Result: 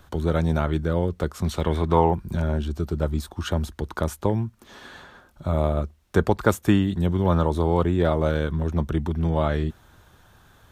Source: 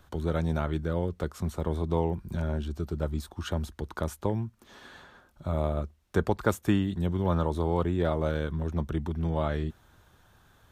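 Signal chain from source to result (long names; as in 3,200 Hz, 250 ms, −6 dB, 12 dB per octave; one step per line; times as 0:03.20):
0:01.43–0:02.14: parametric band 4,500 Hz → 890 Hz +11.5 dB 1.4 octaves
level +6 dB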